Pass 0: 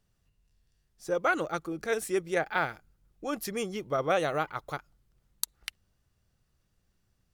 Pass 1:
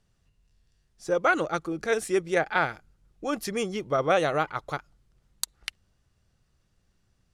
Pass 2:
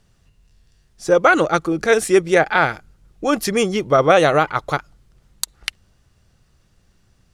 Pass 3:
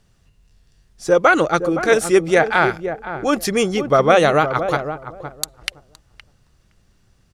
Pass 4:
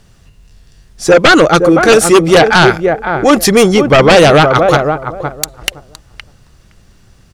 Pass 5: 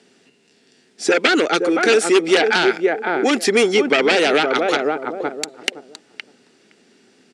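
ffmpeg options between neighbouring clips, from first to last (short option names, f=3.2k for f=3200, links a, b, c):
-af "lowpass=9.4k,volume=4dB"
-af "alimiter=level_in=12dB:limit=-1dB:release=50:level=0:latency=1,volume=-1dB"
-filter_complex "[0:a]asplit=2[a][b];[b]adelay=516,lowpass=f=820:p=1,volume=-8dB,asplit=2[c][d];[d]adelay=516,lowpass=f=820:p=1,volume=0.19,asplit=2[e][f];[f]adelay=516,lowpass=f=820:p=1,volume=0.19[g];[a][c][e][g]amix=inputs=4:normalize=0"
-af "aeval=exprs='0.891*sin(PI/2*2.82*val(0)/0.891)':c=same"
-filter_complex "[0:a]acrossover=split=860|1800[a][b][c];[a]acompressor=threshold=-18dB:ratio=4[d];[b]acompressor=threshold=-17dB:ratio=4[e];[c]acompressor=threshold=-16dB:ratio=4[f];[d][e][f]amix=inputs=3:normalize=0,highpass=f=240:w=0.5412,highpass=f=240:w=1.3066,equalizer=f=250:t=q:w=4:g=8,equalizer=f=410:t=q:w=4:g=8,equalizer=f=580:t=q:w=4:g=-4,equalizer=f=1.1k:t=q:w=4:g=-10,equalizer=f=2.3k:t=q:w=4:g=3,equalizer=f=6.3k:t=q:w=4:g=-4,lowpass=f=8.8k:w=0.5412,lowpass=f=8.8k:w=1.3066,volume=-2.5dB"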